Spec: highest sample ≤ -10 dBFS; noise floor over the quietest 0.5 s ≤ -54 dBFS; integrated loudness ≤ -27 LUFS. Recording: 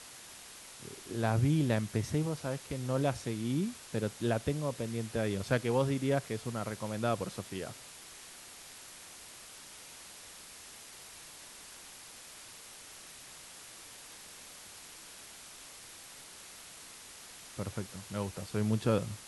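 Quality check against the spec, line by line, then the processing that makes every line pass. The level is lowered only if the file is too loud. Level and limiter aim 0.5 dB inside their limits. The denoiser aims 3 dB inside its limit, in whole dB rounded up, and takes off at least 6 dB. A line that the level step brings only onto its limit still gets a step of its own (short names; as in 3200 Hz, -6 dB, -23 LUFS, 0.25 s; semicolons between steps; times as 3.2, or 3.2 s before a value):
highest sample -15.5 dBFS: OK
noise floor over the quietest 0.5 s -51 dBFS: fail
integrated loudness -34.0 LUFS: OK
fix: denoiser 6 dB, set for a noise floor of -51 dBFS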